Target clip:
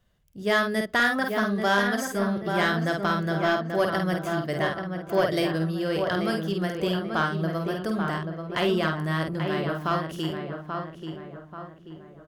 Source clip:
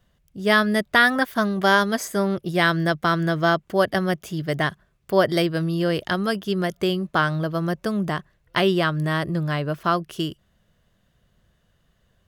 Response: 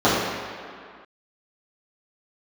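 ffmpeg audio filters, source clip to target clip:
-filter_complex "[0:a]asplit=2[s0][s1];[s1]adelay=50,volume=0.562[s2];[s0][s2]amix=inputs=2:normalize=0,asplit=2[s3][s4];[s4]adelay=835,lowpass=f=2100:p=1,volume=0.501,asplit=2[s5][s6];[s6]adelay=835,lowpass=f=2100:p=1,volume=0.45,asplit=2[s7][s8];[s8]adelay=835,lowpass=f=2100:p=1,volume=0.45,asplit=2[s9][s10];[s10]adelay=835,lowpass=f=2100:p=1,volume=0.45,asplit=2[s11][s12];[s12]adelay=835,lowpass=f=2100:p=1,volume=0.45[s13];[s5][s7][s9][s11][s13]amix=inputs=5:normalize=0[s14];[s3][s14]amix=inputs=2:normalize=0,asoftclip=type=tanh:threshold=0.376,asplit=2[s15][s16];[1:a]atrim=start_sample=2205,atrim=end_sample=3969[s17];[s16][s17]afir=irnorm=-1:irlink=0,volume=0.00708[s18];[s15][s18]amix=inputs=2:normalize=0,volume=0.562"

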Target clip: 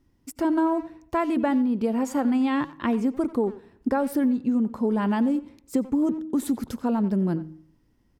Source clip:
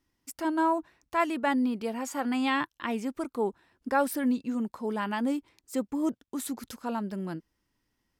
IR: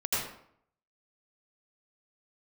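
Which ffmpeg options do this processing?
-filter_complex "[0:a]tiltshelf=f=660:g=7.5,bandreject=f=157.4:t=h:w=4,bandreject=f=314.8:t=h:w=4,acompressor=threshold=0.0447:ratio=16,asplit=2[s0][s1];[s1]adelay=90,highpass=300,lowpass=3400,asoftclip=type=hard:threshold=0.0282,volume=0.178[s2];[s0][s2]amix=inputs=2:normalize=0,asplit=2[s3][s4];[1:a]atrim=start_sample=2205[s5];[s4][s5]afir=irnorm=-1:irlink=0,volume=0.0282[s6];[s3][s6]amix=inputs=2:normalize=0,volume=2.37"

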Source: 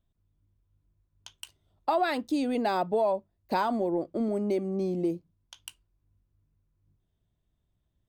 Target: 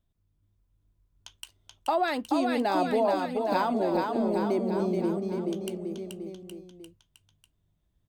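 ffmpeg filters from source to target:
-af "aecho=1:1:430|817|1165|1479|1761:0.631|0.398|0.251|0.158|0.1"

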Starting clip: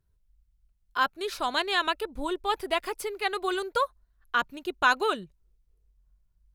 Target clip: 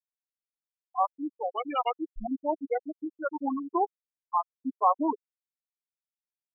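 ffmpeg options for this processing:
-af "afftfilt=real='re*gte(hypot(re,im),0.224)':imag='im*gte(hypot(re,im),0.224)':win_size=1024:overlap=0.75,asetrate=32097,aresample=44100,atempo=1.37395"

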